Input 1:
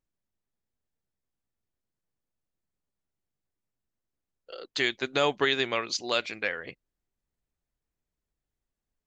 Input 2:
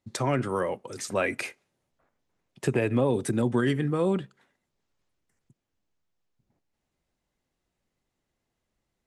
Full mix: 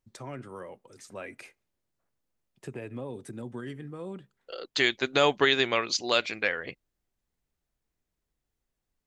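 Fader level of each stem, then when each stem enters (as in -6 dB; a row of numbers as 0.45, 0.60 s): +2.5, -14.0 dB; 0.00, 0.00 s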